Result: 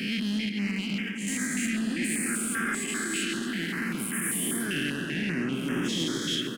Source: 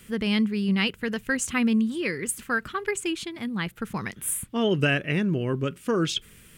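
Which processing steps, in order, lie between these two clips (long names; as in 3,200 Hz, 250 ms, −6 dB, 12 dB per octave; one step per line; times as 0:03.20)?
every bin's largest magnitude spread in time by 480 ms
0:00.49–0:01.28: noise gate −16 dBFS, range −16 dB
high-pass filter 170 Hz 24 dB per octave
flat-topped bell 690 Hz −15.5 dB
brickwall limiter −12.5 dBFS, peak gain reduction 11 dB
on a send: delay with a low-pass on its return 315 ms, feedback 81%, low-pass 2,300 Hz, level −6 dB
on the sum: soft clipping −16 dBFS, distortion −17 dB
echo with shifted repeats 134 ms, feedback 56%, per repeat +32 Hz, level −13.5 dB
notch on a step sequencer 5.1 Hz 950–4,200 Hz
level −5.5 dB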